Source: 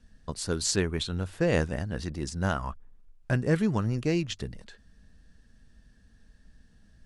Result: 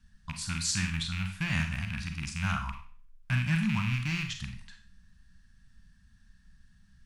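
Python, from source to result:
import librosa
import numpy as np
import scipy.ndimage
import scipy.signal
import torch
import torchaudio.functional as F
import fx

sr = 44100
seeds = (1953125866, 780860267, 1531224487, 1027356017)

y = fx.rattle_buzz(x, sr, strikes_db=-31.0, level_db=-22.0)
y = scipy.signal.sosfilt(scipy.signal.cheby1(2, 1.0, [180.0, 1100.0], 'bandstop', fs=sr, output='sos'), y)
y = fx.rev_schroeder(y, sr, rt60_s=0.44, comb_ms=33, drr_db=5.0)
y = y * 10.0 ** (-2.0 / 20.0)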